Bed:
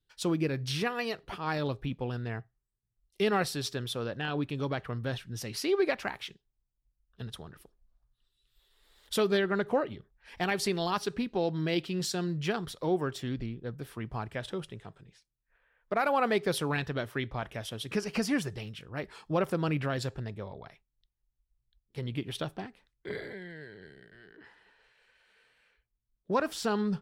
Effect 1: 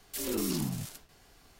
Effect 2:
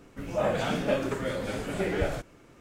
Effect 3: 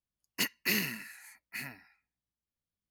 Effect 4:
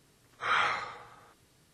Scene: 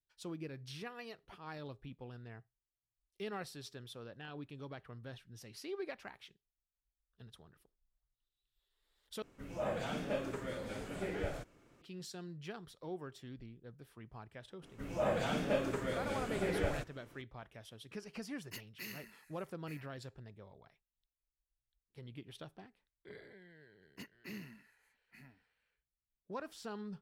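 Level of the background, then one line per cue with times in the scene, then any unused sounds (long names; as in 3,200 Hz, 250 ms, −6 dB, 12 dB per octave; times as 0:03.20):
bed −15 dB
0:09.22: overwrite with 2 −10.5 dB
0:14.62: mix in 2 −6.5 dB
0:18.13: mix in 3 −17 dB
0:23.59: mix in 3 −17.5 dB + spectral tilt −3 dB per octave
not used: 1, 4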